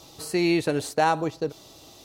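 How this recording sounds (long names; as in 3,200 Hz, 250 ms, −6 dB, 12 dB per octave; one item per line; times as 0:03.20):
background noise floor −50 dBFS
spectral slope −5.0 dB per octave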